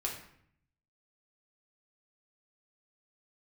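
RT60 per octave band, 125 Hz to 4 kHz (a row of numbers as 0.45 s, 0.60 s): 1.1 s, 0.85 s, 0.65 s, 0.65 s, 0.65 s, 0.50 s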